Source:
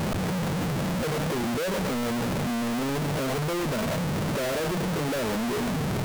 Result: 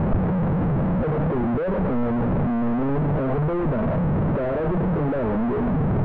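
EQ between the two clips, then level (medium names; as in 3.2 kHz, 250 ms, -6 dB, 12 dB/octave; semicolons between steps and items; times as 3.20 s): low-pass 1.3 kHz 12 dB/octave; distance through air 280 m; bass shelf 76 Hz +9.5 dB; +5.0 dB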